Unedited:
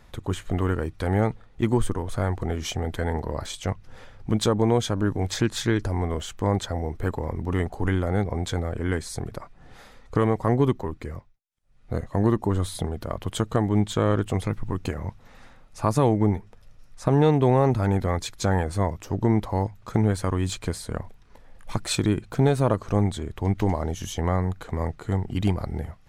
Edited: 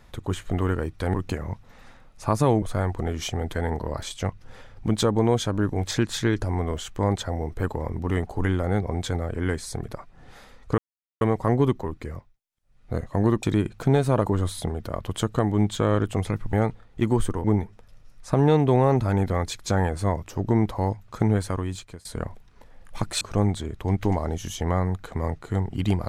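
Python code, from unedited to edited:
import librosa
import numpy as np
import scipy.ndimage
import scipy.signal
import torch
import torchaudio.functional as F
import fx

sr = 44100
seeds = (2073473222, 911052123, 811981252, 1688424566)

y = fx.edit(x, sr, fx.swap(start_s=1.14, length_s=0.91, other_s=14.7, other_length_s=1.48),
    fx.insert_silence(at_s=10.21, length_s=0.43),
    fx.fade_out_to(start_s=20.12, length_s=0.67, floor_db=-22.0),
    fx.move(start_s=21.95, length_s=0.83, to_s=12.43), tone=tone)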